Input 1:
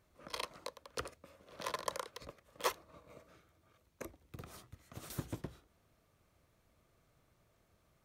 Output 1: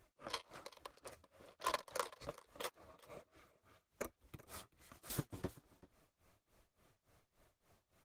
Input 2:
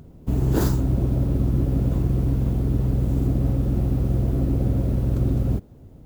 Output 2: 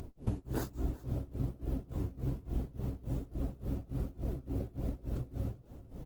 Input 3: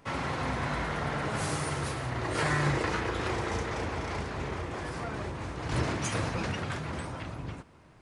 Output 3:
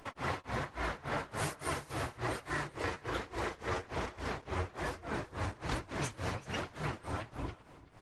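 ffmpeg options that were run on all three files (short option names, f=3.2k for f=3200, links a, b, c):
-filter_complex "[0:a]equalizer=f=180:t=o:w=1.6:g=-5,acompressor=threshold=-34dB:ratio=8,tremolo=f=3.5:d=1,flanger=delay=2.8:depth=8.2:regen=34:speed=1.2:shape=sinusoidal,asplit=2[a][b];[b]aecho=0:1:385:0.106[c];[a][c]amix=inputs=2:normalize=0,volume=9dB" -ar 48000 -c:a libopus -b:a 20k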